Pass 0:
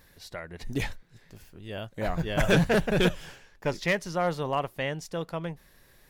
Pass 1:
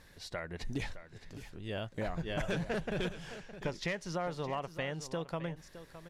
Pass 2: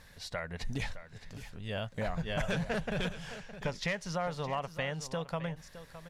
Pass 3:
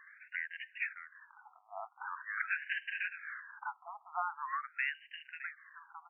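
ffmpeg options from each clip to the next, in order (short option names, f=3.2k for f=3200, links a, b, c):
-af "lowpass=9.1k,acompressor=threshold=-33dB:ratio=6,aecho=1:1:614:0.211"
-af "equalizer=f=340:w=3.3:g=-12.5,volume=3dB"
-af "aeval=exprs='clip(val(0),-1,0.0422)':c=same,highpass=600,lowpass=3.5k,afftfilt=real='re*between(b*sr/1024,940*pow(2200/940,0.5+0.5*sin(2*PI*0.44*pts/sr))/1.41,940*pow(2200/940,0.5+0.5*sin(2*PI*0.44*pts/sr))*1.41)':imag='im*between(b*sr/1024,940*pow(2200/940,0.5+0.5*sin(2*PI*0.44*pts/sr))/1.41,940*pow(2200/940,0.5+0.5*sin(2*PI*0.44*pts/sr))*1.41)':win_size=1024:overlap=0.75,volume=5.5dB"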